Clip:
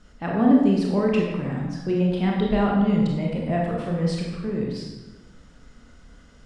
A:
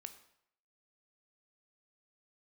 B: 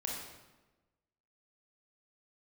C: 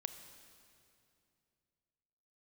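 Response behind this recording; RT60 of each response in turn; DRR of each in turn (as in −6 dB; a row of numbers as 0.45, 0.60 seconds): B; 0.70, 1.1, 2.6 seconds; 8.5, −2.5, 8.5 decibels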